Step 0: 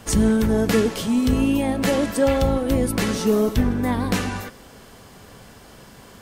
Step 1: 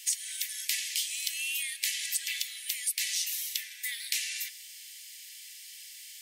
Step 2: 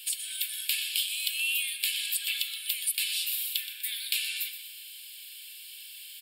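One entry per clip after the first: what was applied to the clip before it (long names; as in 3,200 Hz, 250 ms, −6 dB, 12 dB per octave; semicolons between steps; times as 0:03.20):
Butterworth high-pass 1,900 Hz 72 dB per octave; high-shelf EQ 3,000 Hz +11 dB; downward compressor 6 to 1, threshold −24 dBFS, peak gain reduction 11 dB; level −3 dB
phaser with its sweep stopped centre 1,300 Hz, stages 8; repeating echo 123 ms, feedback 48%, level −11.5 dB; convolution reverb RT60 0.70 s, pre-delay 7 ms, DRR 15.5 dB; level +5.5 dB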